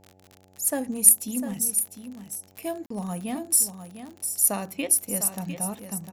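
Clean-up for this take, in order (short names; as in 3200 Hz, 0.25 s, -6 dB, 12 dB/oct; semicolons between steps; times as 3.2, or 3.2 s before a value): de-click; de-hum 93.7 Hz, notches 9; interpolate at 2.86, 44 ms; inverse comb 0.702 s -10 dB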